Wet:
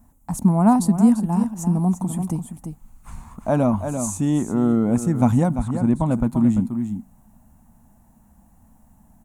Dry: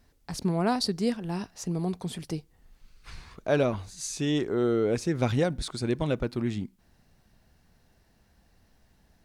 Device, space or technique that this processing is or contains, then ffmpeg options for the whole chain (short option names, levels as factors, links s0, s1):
ducked delay: -filter_complex "[0:a]asplit=3[s0][s1][s2];[s1]adelay=342,volume=0.422[s3];[s2]apad=whole_len=422903[s4];[s3][s4]sidechaincompress=threshold=0.0398:ratio=8:attack=16:release=269[s5];[s0][s5]amix=inputs=2:normalize=0,asettb=1/sr,asplit=3[s6][s7][s8];[s6]atrim=end=5.494[s9];[s7]atrim=start=5.49:end=6.11,asetpts=PTS-STARTPTS,afade=t=in:d=0.004:c=qsin,afade=t=out:st=0.616:d=0.004:c=qsin,acrossover=split=3100[s10][s11];[s11]acompressor=threshold=0.00282:ratio=4:attack=1:release=60[s12];[s10][s12]amix=inputs=2:normalize=0[s13];[s8]atrim=start=6.106[s14];[s9][s13]acrossfade=d=0.004:c1=hsin:c2=qsin[s15];[s15][s14]acrossfade=d=0.004:c1=qsin:c2=hsin,firequalizer=gain_entry='entry(150,0);entry(220,8);entry(400,-14);entry(640,-2);entry(900,4);entry(1600,-12);entry(4800,-22);entry(7000,1);entry(11000,3)':delay=0.05:min_phase=1,volume=2.51"